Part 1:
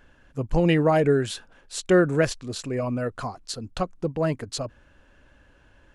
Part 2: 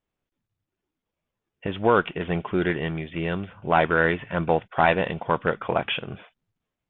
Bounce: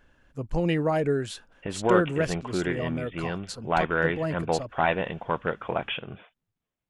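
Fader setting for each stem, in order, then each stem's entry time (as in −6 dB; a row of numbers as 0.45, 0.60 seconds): −5.0, −4.5 decibels; 0.00, 0.00 seconds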